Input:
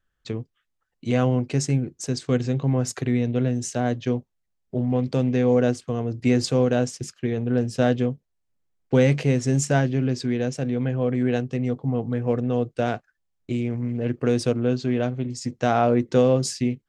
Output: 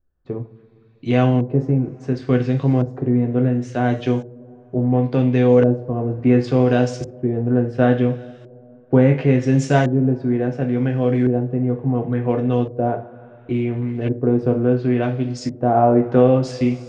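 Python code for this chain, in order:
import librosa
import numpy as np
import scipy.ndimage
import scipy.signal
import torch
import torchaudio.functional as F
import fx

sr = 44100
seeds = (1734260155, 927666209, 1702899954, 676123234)

y = fx.rev_double_slope(x, sr, seeds[0], early_s=0.32, late_s=2.9, knee_db=-21, drr_db=3.0)
y = fx.filter_lfo_lowpass(y, sr, shape='saw_up', hz=0.71, low_hz=510.0, high_hz=5400.0, q=0.84)
y = y * librosa.db_to_amplitude(3.5)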